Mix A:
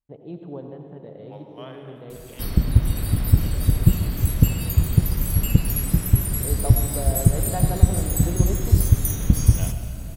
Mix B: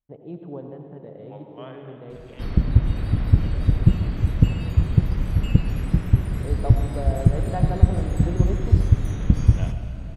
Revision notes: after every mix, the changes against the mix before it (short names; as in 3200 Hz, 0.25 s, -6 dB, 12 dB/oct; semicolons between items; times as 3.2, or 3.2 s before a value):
master: add LPF 2800 Hz 12 dB/oct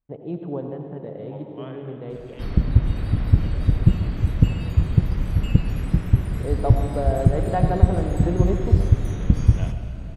first voice +6.0 dB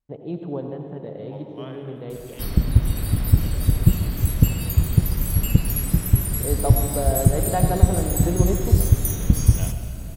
master: remove LPF 2800 Hz 12 dB/oct